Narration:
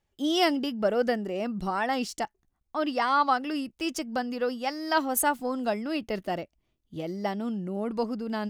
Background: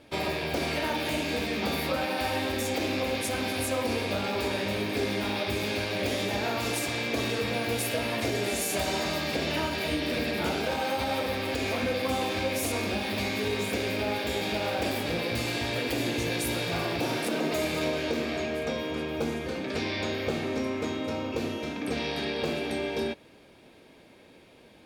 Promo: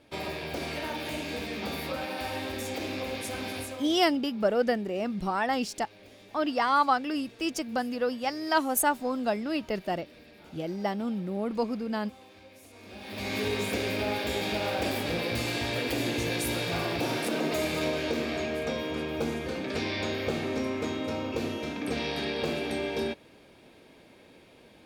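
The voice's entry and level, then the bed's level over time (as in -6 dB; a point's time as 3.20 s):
3.60 s, 0.0 dB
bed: 3.57 s -5 dB
4.12 s -23.5 dB
12.72 s -23.5 dB
13.35 s -0.5 dB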